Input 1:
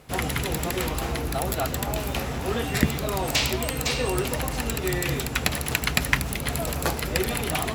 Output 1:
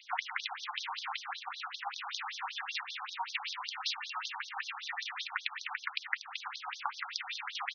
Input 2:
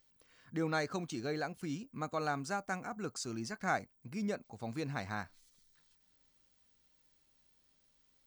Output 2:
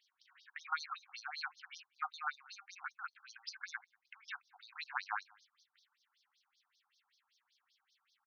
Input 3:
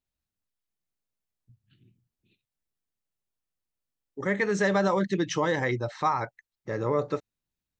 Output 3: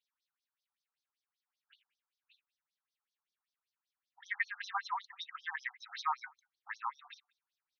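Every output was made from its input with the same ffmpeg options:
-filter_complex "[0:a]acrossover=split=370[a][b];[b]acompressor=threshold=-35dB:ratio=6[c];[a][c]amix=inputs=2:normalize=0,asplit=2[d][e];[e]adelay=186.6,volume=-28dB,highshelf=f=4k:g=-4.2[f];[d][f]amix=inputs=2:normalize=0,afftfilt=real='re*between(b*sr/1024,1000*pow(4700/1000,0.5+0.5*sin(2*PI*5.2*pts/sr))/1.41,1000*pow(4700/1000,0.5+0.5*sin(2*PI*5.2*pts/sr))*1.41)':imag='im*between(b*sr/1024,1000*pow(4700/1000,0.5+0.5*sin(2*PI*5.2*pts/sr))/1.41,1000*pow(4700/1000,0.5+0.5*sin(2*PI*5.2*pts/sr))*1.41)':win_size=1024:overlap=0.75,volume=7dB"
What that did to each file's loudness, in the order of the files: -12.0, -6.0, -12.0 LU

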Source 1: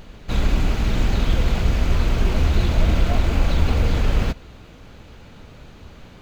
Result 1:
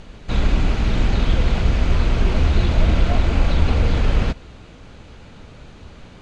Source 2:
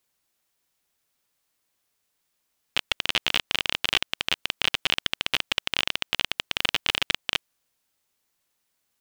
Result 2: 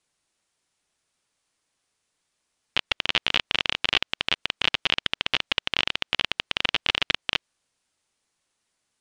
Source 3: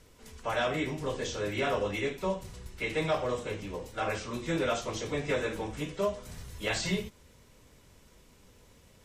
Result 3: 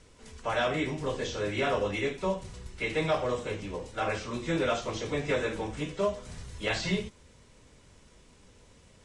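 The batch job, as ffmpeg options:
-filter_complex "[0:a]acrossover=split=5700[a][b];[b]acompressor=threshold=-52dB:ratio=4:attack=1:release=60[c];[a][c]amix=inputs=2:normalize=0,volume=1.5dB" -ar 22050 -c:a aac -b:a 96k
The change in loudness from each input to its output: +1.5, +1.0, +1.5 LU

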